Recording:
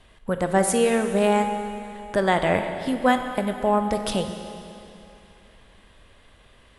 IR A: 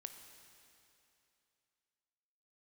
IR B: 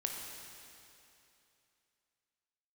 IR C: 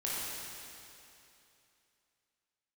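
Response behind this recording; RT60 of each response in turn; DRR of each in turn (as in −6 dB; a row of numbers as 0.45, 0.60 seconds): A; 2.8, 2.8, 2.8 seconds; 6.0, 0.5, −7.5 decibels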